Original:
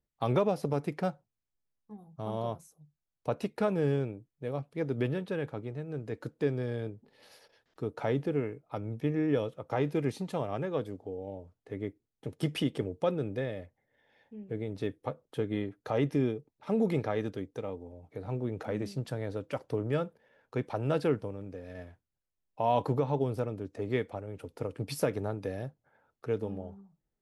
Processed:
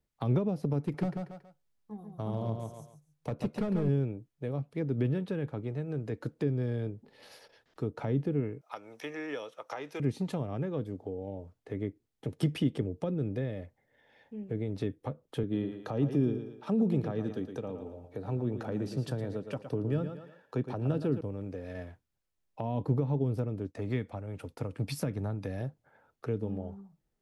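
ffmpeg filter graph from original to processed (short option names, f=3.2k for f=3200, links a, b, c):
-filter_complex "[0:a]asettb=1/sr,asplit=3[a][b][c];[a]atrim=end=0.804[d];[b]atrim=start=0.8:end=3.89,asetpts=PTS-STARTPTS,afade=t=in:d=0.004:c=qsin,afade=t=out:st=3.086:d=0.004:c=qsin,volume=25.5dB,asoftclip=hard,volume=-25.5dB,aecho=1:1:139|278|417:0.531|0.138|0.0359,atrim=end_sample=136269[e];[c]atrim=start=3.886[f];[d][e]acrossfade=d=0.004:c1=hsin:c2=qsin[g];[g][f]acrossfade=d=0.004:c1=qsin:c2=hsin,asettb=1/sr,asplit=3[h][i][j];[h]atrim=end=8.614[k];[i]atrim=start=8.61:end=10,asetpts=PTS-STARTPTS,afade=t=in:d=0.004:c=qsin,afade=t=out:st=1.386:d=0.004:c=qsin,highpass=880,equalizer=f=5.8k:w=6.8:g=9,acontrast=35[l];[j]atrim=start=9.996[m];[k][l]acrossfade=d=0.004:c1=hsin:c2=qsin[n];[n][m]acrossfade=d=0.004:c1=qsin:c2=hsin,asettb=1/sr,asplit=3[o][p][q];[o]atrim=end=15.434[r];[p]atrim=start=15.43:end=21.21,asetpts=PTS-STARTPTS,afade=t=in:d=0.004:c=qsin,afade=t=out:st=5.776:d=0.004:c=qsin,highpass=110,bandreject=f=2.1k:w=6,aecho=1:1:113|226|339:0.299|0.0925|0.0287,atrim=end_sample=254898[s];[q]atrim=start=21.206[t];[r][s]acrossfade=d=0.004:c1=hsin:c2=qsin[u];[u][t]acrossfade=d=0.004:c1=qsin:c2=hsin,asettb=1/sr,asplit=3[v][w][x];[v]atrim=end=23.674[y];[w]atrim=start=23.67:end=25.61,asetpts=PTS-STARTPTS,afade=t=in:d=0.004:c=qsin,afade=t=out:st=1.936:d=0.004:c=qsin,bandreject=f=3k:w=28,agate=range=-33dB:threshold=-56dB:ratio=3:release=100:detection=peak,equalizer=f=410:t=o:w=0.87:g=-6[z];[x]atrim=start=25.606[aa];[y][z]acrossfade=d=0.004:c1=hsin:c2=qsin[ab];[ab][aa]acrossfade=d=0.004:c1=qsin:c2=hsin,highshelf=f=9.4k:g=-4,acrossover=split=320[ac][ad];[ad]acompressor=threshold=-43dB:ratio=6[ae];[ac][ae]amix=inputs=2:normalize=0,volume=4dB"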